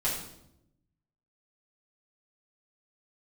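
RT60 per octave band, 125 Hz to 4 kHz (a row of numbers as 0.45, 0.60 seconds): 1.3, 1.2, 0.90, 0.70, 0.60, 0.65 seconds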